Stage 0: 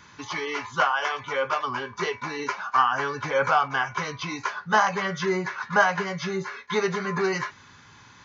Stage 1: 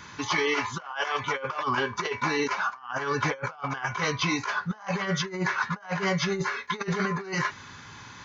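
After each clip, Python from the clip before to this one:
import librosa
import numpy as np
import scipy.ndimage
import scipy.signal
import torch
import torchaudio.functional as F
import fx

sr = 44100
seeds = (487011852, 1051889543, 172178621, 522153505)

y = fx.over_compress(x, sr, threshold_db=-30.0, ratio=-0.5)
y = y * 10.0 ** (1.5 / 20.0)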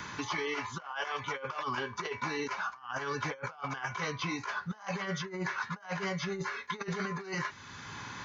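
y = fx.band_squash(x, sr, depth_pct=70)
y = y * 10.0 ** (-8.0 / 20.0)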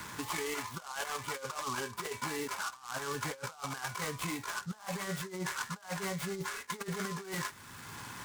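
y = fx.noise_mod_delay(x, sr, seeds[0], noise_hz=5200.0, depth_ms=0.057)
y = y * 10.0 ** (-2.0 / 20.0)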